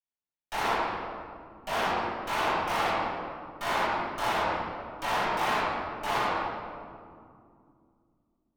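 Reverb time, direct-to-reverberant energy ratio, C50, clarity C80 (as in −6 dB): 2.4 s, −14.5 dB, −3.5 dB, −1.5 dB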